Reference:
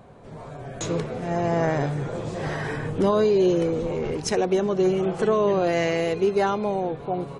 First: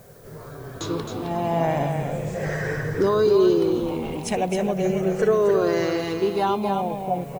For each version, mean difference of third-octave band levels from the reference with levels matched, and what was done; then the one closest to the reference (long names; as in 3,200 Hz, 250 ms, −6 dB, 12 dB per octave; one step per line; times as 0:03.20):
4.5 dB: rippled gain that drifts along the octave scale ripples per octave 0.54, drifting −0.39 Hz, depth 10 dB
background noise blue −54 dBFS
on a send: single-tap delay 265 ms −6.5 dB
on the sum: level −1.5 dB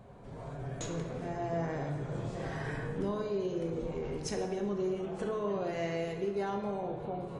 3.0 dB: low-shelf EQ 150 Hz +6.5 dB
downward compressor 2.5 to 1, threshold −29 dBFS, peak gain reduction 9.5 dB
dense smooth reverb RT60 1.2 s, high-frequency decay 0.6×, DRR 2 dB
level −8 dB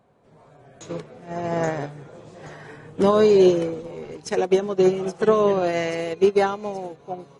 6.5 dB: low-shelf EQ 80 Hz −11.5 dB
delay with a high-pass on its return 827 ms, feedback 59%, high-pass 5,000 Hz, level −9 dB
expander for the loud parts 2.5 to 1, over −30 dBFS
level +6.5 dB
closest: second